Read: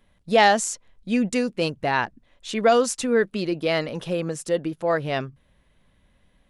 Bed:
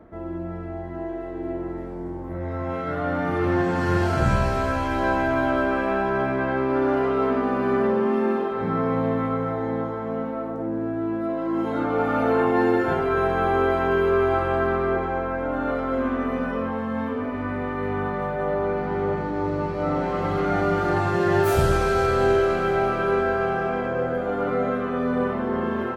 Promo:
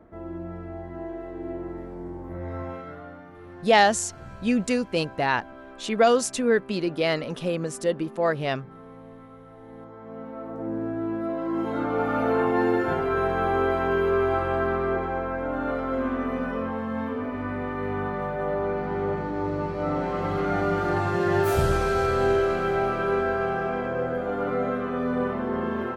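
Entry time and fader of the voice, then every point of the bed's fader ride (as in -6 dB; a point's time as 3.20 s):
3.35 s, -1.0 dB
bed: 2.60 s -4 dB
3.30 s -22 dB
9.46 s -22 dB
10.71 s -2.5 dB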